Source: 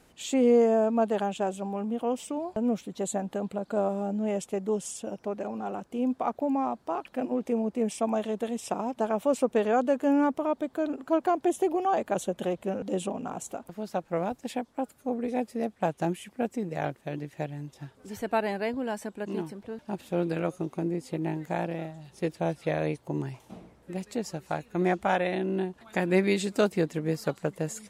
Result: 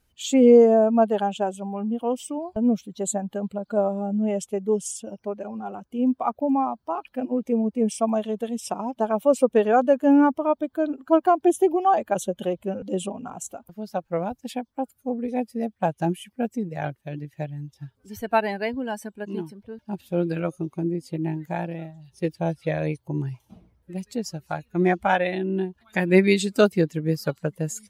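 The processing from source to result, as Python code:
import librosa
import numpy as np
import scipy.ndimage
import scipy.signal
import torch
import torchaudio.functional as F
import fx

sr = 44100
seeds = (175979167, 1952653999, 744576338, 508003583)

y = fx.bin_expand(x, sr, power=1.5)
y = y * 10.0 ** (8.5 / 20.0)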